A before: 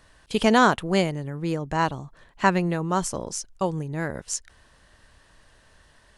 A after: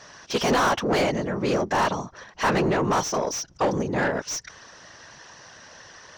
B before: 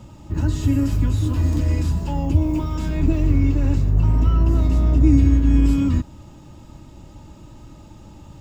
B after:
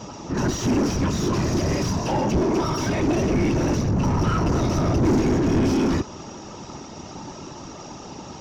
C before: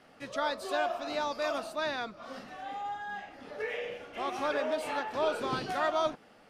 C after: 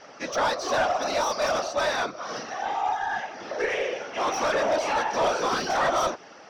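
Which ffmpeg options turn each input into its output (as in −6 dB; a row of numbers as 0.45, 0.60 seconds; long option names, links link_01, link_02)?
-filter_complex "[0:a]lowpass=frequency=5800:width_type=q:width=12,afftfilt=real='hypot(re,im)*cos(2*PI*random(0))':imag='hypot(re,im)*sin(2*PI*random(1))':win_size=512:overlap=0.75,asplit=2[link_01][link_02];[link_02]highpass=frequency=720:poles=1,volume=30dB,asoftclip=type=tanh:threshold=-9.5dB[link_03];[link_01][link_03]amix=inputs=2:normalize=0,lowpass=frequency=1300:poles=1,volume=-6dB,volume=-2dB"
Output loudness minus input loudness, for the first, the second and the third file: +0.5, −2.5, +7.5 LU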